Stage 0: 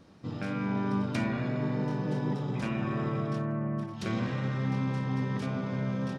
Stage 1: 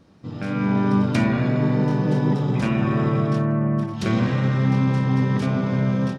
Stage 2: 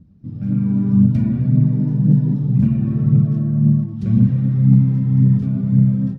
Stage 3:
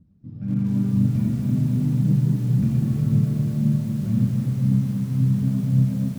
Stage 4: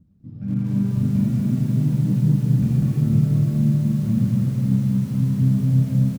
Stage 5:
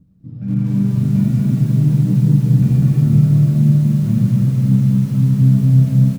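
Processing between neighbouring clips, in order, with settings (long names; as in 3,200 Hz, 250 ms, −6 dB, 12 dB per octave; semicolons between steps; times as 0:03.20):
low-shelf EQ 350 Hz +3 dB; automatic gain control gain up to 8.5 dB
drawn EQ curve 210 Hz 0 dB, 340 Hz −16 dB, 1,000 Hz −27 dB; phase shifter 1.9 Hz, delay 3.6 ms, feedback 40%; level +6 dB
automatic gain control gain up to 14.5 dB; feedback echo at a low word length 242 ms, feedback 80%, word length 6 bits, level −7 dB; level −8.5 dB
single-tap delay 196 ms −3.5 dB
convolution reverb, pre-delay 6 ms, DRR 7 dB; level +3.5 dB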